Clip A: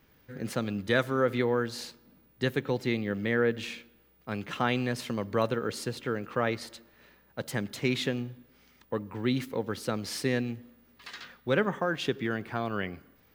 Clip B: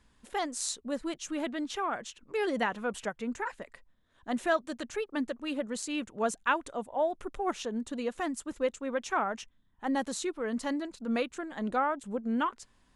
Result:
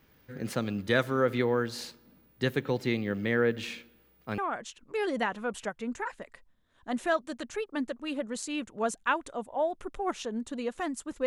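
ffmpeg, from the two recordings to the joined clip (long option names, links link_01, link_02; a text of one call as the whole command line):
ffmpeg -i cue0.wav -i cue1.wav -filter_complex "[0:a]apad=whole_dur=11.26,atrim=end=11.26,atrim=end=4.382[link_01];[1:a]atrim=start=1.778:end=8.66[link_02];[link_01][link_02]acrossfade=duration=0.004:curve1=hsin:curve2=hsin" out.wav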